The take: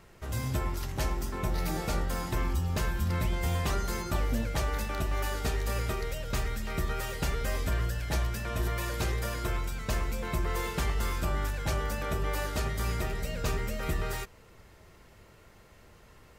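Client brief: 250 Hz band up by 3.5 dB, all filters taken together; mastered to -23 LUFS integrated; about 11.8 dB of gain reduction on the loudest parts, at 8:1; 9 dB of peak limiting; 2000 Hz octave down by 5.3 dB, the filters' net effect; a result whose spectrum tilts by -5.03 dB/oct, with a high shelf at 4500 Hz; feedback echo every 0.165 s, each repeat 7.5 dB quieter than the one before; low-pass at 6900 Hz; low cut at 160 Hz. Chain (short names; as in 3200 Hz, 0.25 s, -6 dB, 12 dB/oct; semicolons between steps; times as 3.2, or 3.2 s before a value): HPF 160 Hz; LPF 6900 Hz; bell 250 Hz +6.5 dB; bell 2000 Hz -6 dB; high shelf 4500 Hz -4 dB; compressor 8:1, threshold -40 dBFS; limiter -37.5 dBFS; feedback echo 0.165 s, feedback 42%, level -7.5 dB; gain +23 dB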